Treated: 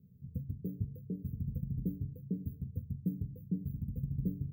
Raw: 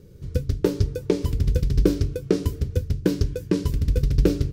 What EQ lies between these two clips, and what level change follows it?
high-pass 280 Hz 12 dB/octave; inverse Chebyshev band-stop 760–9500 Hz, stop band 60 dB; static phaser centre 800 Hz, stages 4; +5.0 dB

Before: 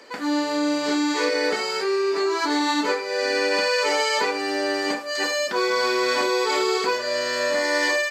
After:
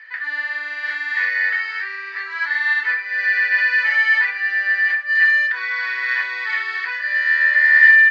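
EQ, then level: resonant high-pass 1.8 kHz, resonance Q 11; low-pass 4.2 kHz 12 dB/octave; distance through air 150 m; -3.0 dB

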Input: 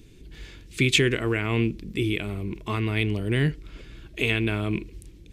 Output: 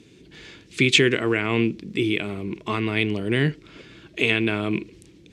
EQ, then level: band-pass 160–7400 Hz; +4.0 dB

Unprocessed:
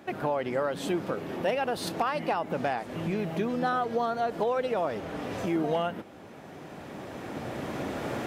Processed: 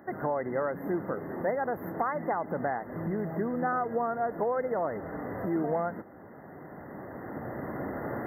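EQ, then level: brick-wall FIR band-stop 2.1–12 kHz; -1.5 dB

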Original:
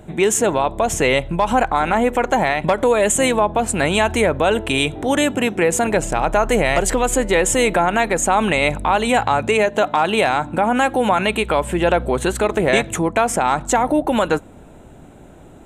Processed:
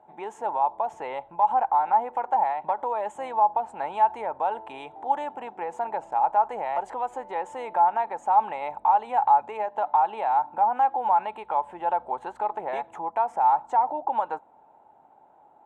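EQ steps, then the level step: band-pass filter 860 Hz, Q 9.9; +3.5 dB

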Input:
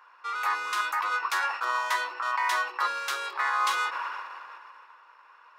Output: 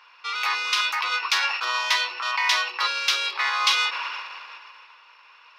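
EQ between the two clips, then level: high-order bell 3.6 kHz +14 dB; 0.0 dB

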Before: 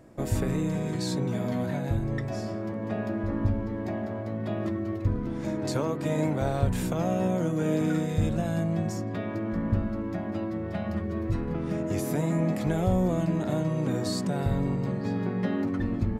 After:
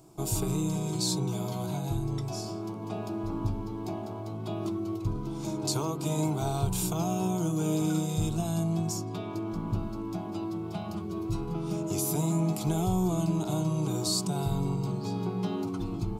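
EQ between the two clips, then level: treble shelf 2.6 kHz +10 dB; static phaser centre 360 Hz, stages 8; 0.0 dB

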